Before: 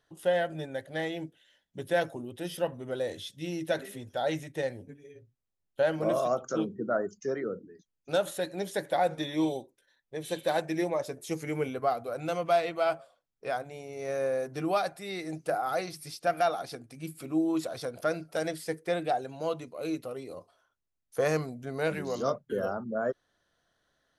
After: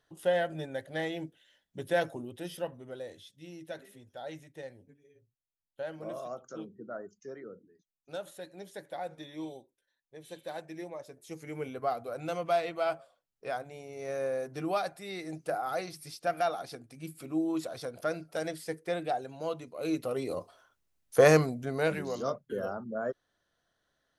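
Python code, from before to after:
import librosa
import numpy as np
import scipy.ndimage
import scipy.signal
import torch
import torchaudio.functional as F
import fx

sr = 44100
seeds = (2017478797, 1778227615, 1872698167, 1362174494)

y = fx.gain(x, sr, db=fx.line((2.2, -1.0), (3.26, -12.0), (11.13, -12.0), (11.92, -3.0), (19.65, -3.0), (20.25, 7.5), (21.29, 7.5), (22.24, -3.5)))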